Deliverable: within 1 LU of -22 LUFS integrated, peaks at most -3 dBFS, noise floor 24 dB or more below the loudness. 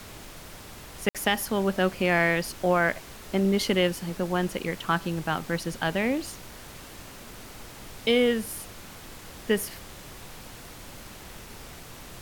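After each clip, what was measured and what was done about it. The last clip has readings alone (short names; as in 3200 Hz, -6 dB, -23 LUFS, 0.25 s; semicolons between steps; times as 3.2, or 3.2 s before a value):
dropouts 1; longest dropout 57 ms; noise floor -45 dBFS; noise floor target -51 dBFS; loudness -26.5 LUFS; peak -11.0 dBFS; loudness target -22.0 LUFS
-> interpolate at 1.09, 57 ms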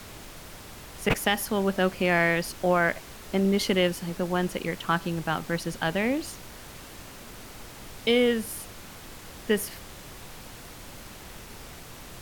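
dropouts 0; noise floor -45 dBFS; noise floor target -51 dBFS
-> noise print and reduce 6 dB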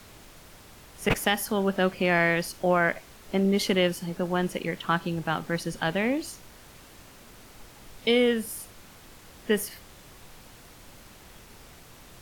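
noise floor -51 dBFS; loudness -26.5 LUFS; peak -11.0 dBFS; loudness target -22.0 LUFS
-> gain +4.5 dB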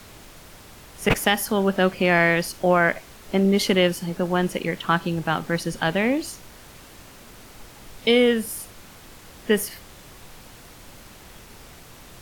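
loudness -22.0 LUFS; peak -6.5 dBFS; noise floor -46 dBFS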